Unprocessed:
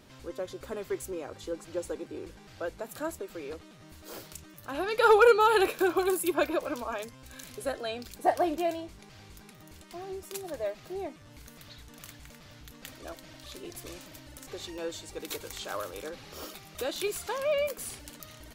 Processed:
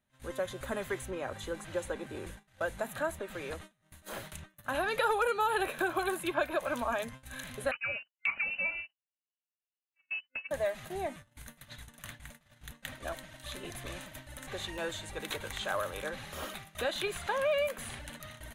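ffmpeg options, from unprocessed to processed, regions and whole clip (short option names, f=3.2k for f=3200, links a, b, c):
-filter_complex "[0:a]asettb=1/sr,asplit=3[a][b][c];[a]atrim=end=7.714[d];[b]atrim=start=7.71:end=10.51,asetpts=PTS-STARTPTS,afade=t=in:d=0.004:c=qsin,afade=t=out:st=2.796:d=0.004:c=qsin,bandreject=f=1.1k:w=8.7,agate=range=-33dB:threshold=-39dB:ratio=16:release=100:detection=peak,lowpass=f=2.6k:t=q:w=0.5098,lowpass=f=2.6k:t=q:w=0.6013,lowpass=f=2.6k:t=q:w=0.9,lowpass=f=2.6k:t=q:w=2.563,afreqshift=-3000[e];[c]atrim=start=10.506[f];[d][e]acrossfade=d=0.004:c1=hsin:c2=qsin[g];[g][f]acrossfade=d=0.004:c1=qsin:c2=hsin,agate=range=-29dB:threshold=-48dB:ratio=16:detection=peak,superequalizer=6b=0.398:7b=0.447:11b=1.58:14b=0.398:16b=2,acrossover=split=830|4700[h][i][j];[h]acompressor=threshold=-36dB:ratio=4[k];[i]acompressor=threshold=-38dB:ratio=4[l];[j]acompressor=threshold=-55dB:ratio=4[m];[k][l][m]amix=inputs=3:normalize=0,volume=4.5dB"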